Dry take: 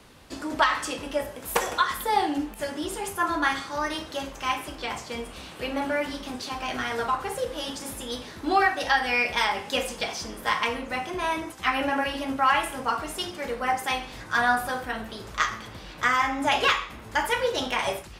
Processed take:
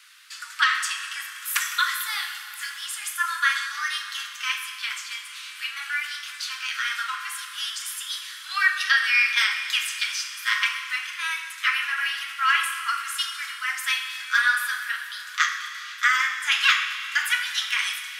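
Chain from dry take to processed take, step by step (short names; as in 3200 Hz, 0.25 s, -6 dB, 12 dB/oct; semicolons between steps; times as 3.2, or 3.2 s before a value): steep high-pass 1300 Hz 48 dB/oct; Schroeder reverb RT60 3 s, combs from 30 ms, DRR 7.5 dB; gain +5 dB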